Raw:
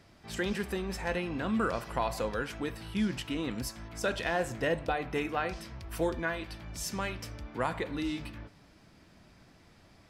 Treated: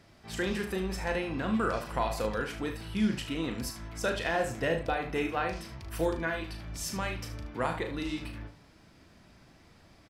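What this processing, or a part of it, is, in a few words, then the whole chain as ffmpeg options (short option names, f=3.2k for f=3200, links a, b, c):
slapback doubling: -filter_complex "[0:a]asplit=3[a][b][c];[b]adelay=37,volume=-7.5dB[d];[c]adelay=75,volume=-11dB[e];[a][d][e]amix=inputs=3:normalize=0"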